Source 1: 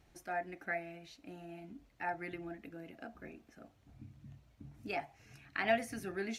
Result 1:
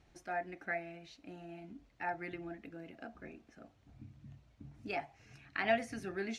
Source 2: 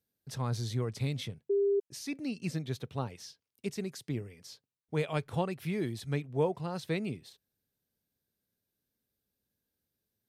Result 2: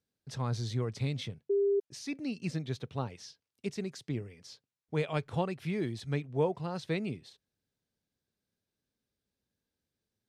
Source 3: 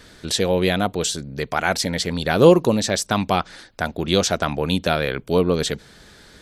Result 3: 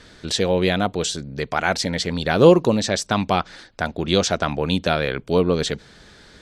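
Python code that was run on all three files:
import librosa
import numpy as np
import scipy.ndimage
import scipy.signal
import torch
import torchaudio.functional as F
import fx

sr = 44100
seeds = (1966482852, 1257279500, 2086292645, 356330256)

y = scipy.signal.sosfilt(scipy.signal.butter(2, 7300.0, 'lowpass', fs=sr, output='sos'), x)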